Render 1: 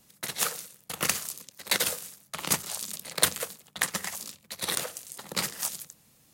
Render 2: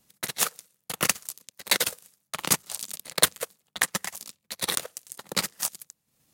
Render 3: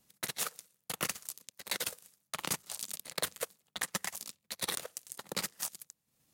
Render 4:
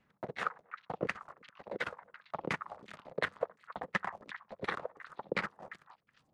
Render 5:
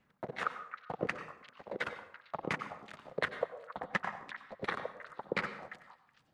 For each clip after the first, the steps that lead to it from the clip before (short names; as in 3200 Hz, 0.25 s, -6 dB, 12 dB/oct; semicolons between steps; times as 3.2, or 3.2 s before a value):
transient shaper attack +4 dB, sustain -11 dB; sample leveller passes 1; gain -3.5 dB
limiter -13.5 dBFS, peak gain reduction 11 dB; vocal rider within 4 dB 0.5 s; gain -5 dB
delay with a stepping band-pass 0.272 s, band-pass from 1400 Hz, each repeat 1.4 oct, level -7.5 dB; LFO low-pass saw down 2.8 Hz 410–2200 Hz; gain +2 dB
plate-style reverb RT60 0.6 s, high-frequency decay 0.85×, pre-delay 80 ms, DRR 11 dB